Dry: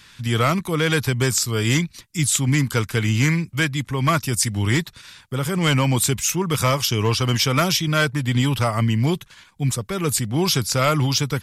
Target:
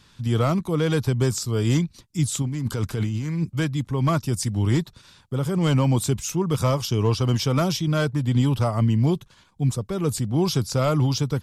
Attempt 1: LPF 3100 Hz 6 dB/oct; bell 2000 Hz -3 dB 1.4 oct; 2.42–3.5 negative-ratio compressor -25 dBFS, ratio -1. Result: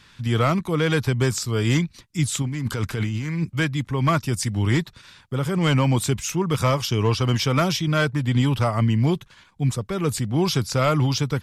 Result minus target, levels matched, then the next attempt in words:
2000 Hz band +6.5 dB
LPF 3100 Hz 6 dB/oct; bell 2000 Hz -11.5 dB 1.4 oct; 2.42–3.5 negative-ratio compressor -25 dBFS, ratio -1

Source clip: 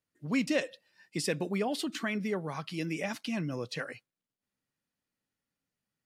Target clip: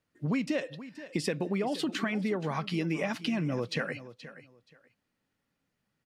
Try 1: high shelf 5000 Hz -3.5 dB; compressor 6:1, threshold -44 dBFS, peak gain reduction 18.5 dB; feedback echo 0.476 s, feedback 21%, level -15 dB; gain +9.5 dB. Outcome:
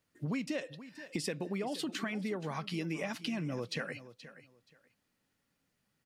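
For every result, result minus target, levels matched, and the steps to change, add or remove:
compressor: peak gain reduction +6 dB; 8000 Hz band +4.5 dB
change: compressor 6:1, threshold -37 dBFS, peak gain reduction 12.5 dB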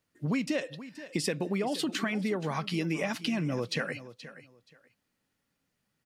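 8000 Hz band +4.5 dB
change: high shelf 5000 Hz -11.5 dB

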